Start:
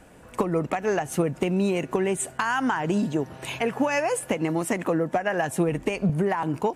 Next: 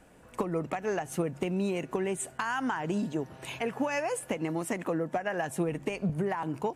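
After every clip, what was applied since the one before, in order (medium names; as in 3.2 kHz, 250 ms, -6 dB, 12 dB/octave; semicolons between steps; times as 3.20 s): de-hum 47.61 Hz, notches 3; trim -6.5 dB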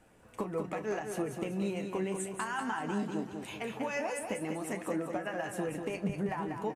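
flange 0.77 Hz, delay 8.8 ms, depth 1.5 ms, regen +41%; doubling 32 ms -12 dB; feedback delay 193 ms, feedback 44%, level -6 dB; trim -1 dB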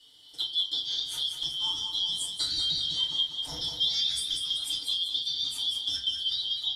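four frequency bands reordered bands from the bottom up 3412; FDN reverb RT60 0.35 s, low-frequency decay 1.3×, high-frequency decay 0.6×, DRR -7.5 dB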